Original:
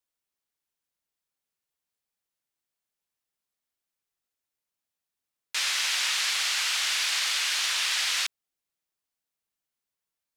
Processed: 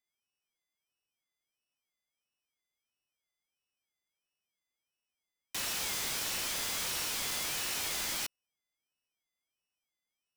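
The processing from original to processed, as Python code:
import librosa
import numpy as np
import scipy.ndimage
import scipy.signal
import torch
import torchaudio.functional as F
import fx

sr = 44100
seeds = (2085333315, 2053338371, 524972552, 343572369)

y = np.r_[np.sort(x[:len(x) // 16 * 16].reshape(-1, 16), axis=1).ravel(), x[len(x) // 16 * 16:]]
y = (np.mod(10.0 ** (27.5 / 20.0) * y + 1.0, 2.0) - 1.0) / 10.0 ** (27.5 / 20.0)
y = fx.ring_lfo(y, sr, carrier_hz=430.0, swing_pct=70, hz=1.5)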